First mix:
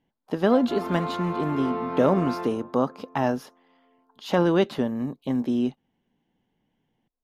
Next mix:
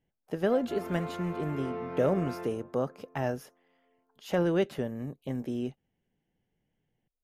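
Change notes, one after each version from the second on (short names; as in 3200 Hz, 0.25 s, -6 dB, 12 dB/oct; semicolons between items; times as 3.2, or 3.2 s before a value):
master: add graphic EQ 250/1000/4000 Hz -10/-12/-11 dB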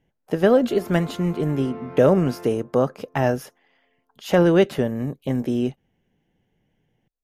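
speech +10.5 dB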